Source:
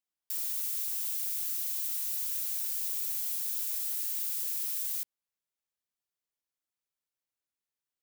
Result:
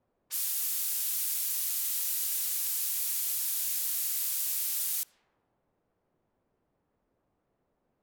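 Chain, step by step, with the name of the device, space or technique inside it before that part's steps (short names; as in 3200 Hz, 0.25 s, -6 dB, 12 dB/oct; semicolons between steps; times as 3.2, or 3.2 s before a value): cassette deck with a dynamic noise filter (white noise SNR 33 dB; low-pass opened by the level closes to 580 Hz, open at -32.5 dBFS); gain +6 dB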